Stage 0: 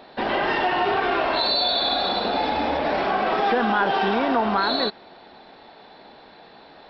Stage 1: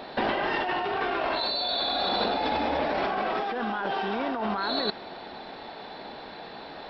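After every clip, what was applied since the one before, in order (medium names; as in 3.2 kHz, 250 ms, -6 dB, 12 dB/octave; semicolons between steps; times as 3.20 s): compressor with a negative ratio -28 dBFS, ratio -1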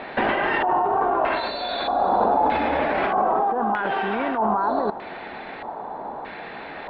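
dynamic bell 2.2 kHz, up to -5 dB, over -45 dBFS, Q 1.8; LFO low-pass square 0.8 Hz 970–2200 Hz; trim +4 dB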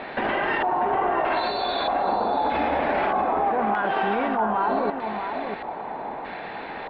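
peak limiter -15.5 dBFS, peak gain reduction 6.5 dB; echo from a far wall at 110 m, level -6 dB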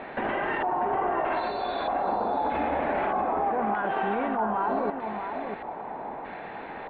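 distance through air 320 m; trim -2.5 dB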